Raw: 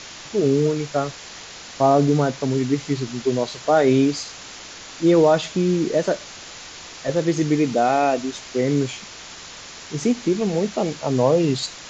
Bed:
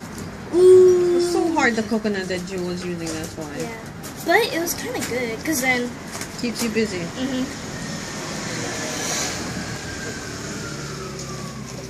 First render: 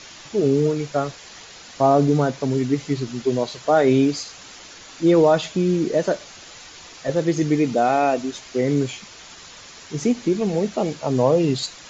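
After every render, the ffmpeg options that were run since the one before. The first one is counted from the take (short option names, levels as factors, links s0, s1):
-af "afftdn=nr=6:nf=-39"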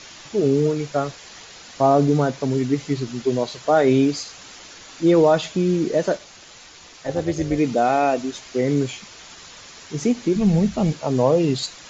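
-filter_complex "[0:a]asplit=3[s0][s1][s2];[s0]afade=t=out:st=6.16:d=0.02[s3];[s1]tremolo=f=250:d=0.621,afade=t=in:st=6.16:d=0.02,afade=t=out:st=7.57:d=0.02[s4];[s2]afade=t=in:st=7.57:d=0.02[s5];[s3][s4][s5]amix=inputs=3:normalize=0,asplit=3[s6][s7][s8];[s6]afade=t=out:st=10.35:d=0.02[s9];[s7]asubboost=boost=9.5:cutoff=130,afade=t=in:st=10.35:d=0.02,afade=t=out:st=10.91:d=0.02[s10];[s8]afade=t=in:st=10.91:d=0.02[s11];[s9][s10][s11]amix=inputs=3:normalize=0"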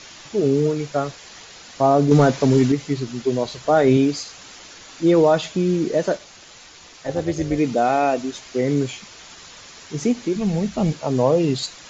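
-filter_complex "[0:a]asettb=1/sr,asplit=3[s0][s1][s2];[s0]atrim=end=2.114[s3];[s1]atrim=start=2.11:end=2.72,asetpts=PTS-STARTPTS,afade=t=in:d=0.004:c=qsin,afade=t=out:st=0.606:d=0.004:c=qsin,acontrast=68[s4];[s2]atrim=start=2.716[s5];[s3][s4]acrossfade=d=0.004:c1=hsin:c2=qsin[s6];[s6][s5]acrossfade=d=0.004:c1=qsin:c2=hsin,asettb=1/sr,asplit=3[s7][s8][s9];[s7]atrim=end=3.454[s10];[s8]atrim=start=3.45:end=3.97,asetpts=PTS-STARTPTS,afade=t=in:d=0.004:c=qsin,afade=t=out:st=0.516:d=0.004:c=qsin,lowshelf=f=120:g=9.5[s11];[s9]atrim=start=3.966[s12];[s10][s11]acrossfade=d=0.004:c1=hsin:c2=qsin[s13];[s13][s12]acrossfade=d=0.004:c1=qsin:c2=hsin,asettb=1/sr,asplit=3[s14][s15][s16];[s14]atrim=end=10.254[s17];[s15]atrim=start=10.25:end=10.76,asetpts=PTS-STARTPTS,afade=t=in:d=0.004:c=qsin,afade=t=out:st=0.506:d=0.004:c=qsin,lowshelf=f=230:g=-7.5[s18];[s16]atrim=start=10.756[s19];[s17][s18]acrossfade=d=0.004:c1=hsin:c2=qsin[s20];[s20][s19]acrossfade=d=0.004:c1=qsin:c2=hsin"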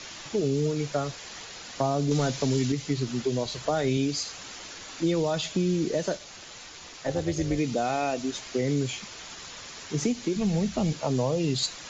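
-filter_complex "[0:a]acrossover=split=140|2700[s0][s1][s2];[s0]alimiter=level_in=1.68:limit=0.0631:level=0:latency=1,volume=0.596[s3];[s1]acompressor=threshold=0.0562:ratio=6[s4];[s3][s4][s2]amix=inputs=3:normalize=0"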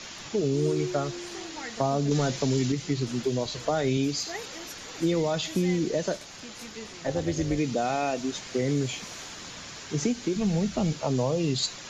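-filter_complex "[1:a]volume=0.0891[s0];[0:a][s0]amix=inputs=2:normalize=0"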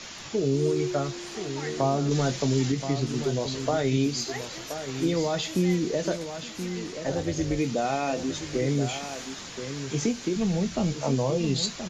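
-filter_complex "[0:a]asplit=2[s0][s1];[s1]adelay=22,volume=0.282[s2];[s0][s2]amix=inputs=2:normalize=0,aecho=1:1:1026:0.335"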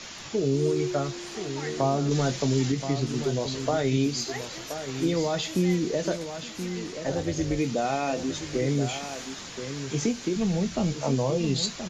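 -af anull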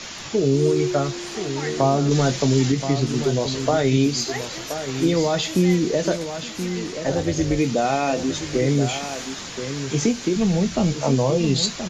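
-af "volume=2"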